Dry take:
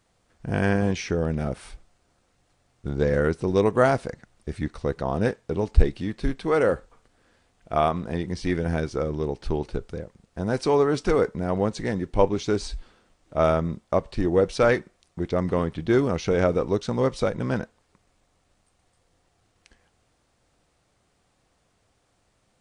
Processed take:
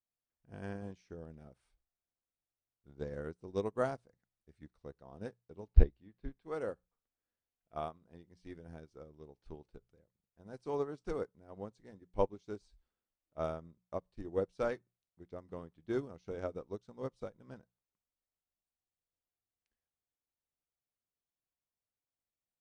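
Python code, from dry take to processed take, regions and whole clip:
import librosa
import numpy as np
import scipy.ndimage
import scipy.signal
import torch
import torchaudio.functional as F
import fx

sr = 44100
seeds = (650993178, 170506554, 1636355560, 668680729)

y = fx.chain(x, sr, fx.air_absorb(metres=220.0),
    fx.notch(hz=1300.0, q=23.0), at=(5.67, 6.42))
y = fx.hum_notches(y, sr, base_hz=60, count=3)
y = fx.dynamic_eq(y, sr, hz=2100.0, q=1.3, threshold_db=-43.0, ratio=4.0, max_db=-5)
y = fx.upward_expand(y, sr, threshold_db=-31.0, expansion=2.5)
y = F.gain(torch.from_numpy(y), -3.5).numpy()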